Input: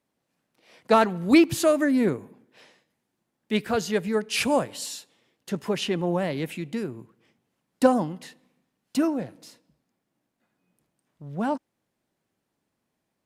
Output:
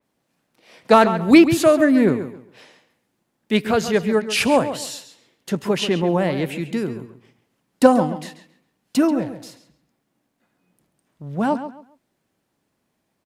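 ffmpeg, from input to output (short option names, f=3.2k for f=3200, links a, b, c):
-filter_complex "[0:a]asplit=2[a][b];[b]adelay=136,lowpass=f=4.5k:p=1,volume=-11dB,asplit=2[c][d];[d]adelay=136,lowpass=f=4.5k:p=1,volume=0.25,asplit=2[e][f];[f]adelay=136,lowpass=f=4.5k:p=1,volume=0.25[g];[a][c][e][g]amix=inputs=4:normalize=0,adynamicequalizer=threshold=0.00891:dfrequency=3700:dqfactor=0.7:tfrequency=3700:tqfactor=0.7:attack=5:release=100:ratio=0.375:range=2.5:mode=cutabove:tftype=highshelf,volume=6dB"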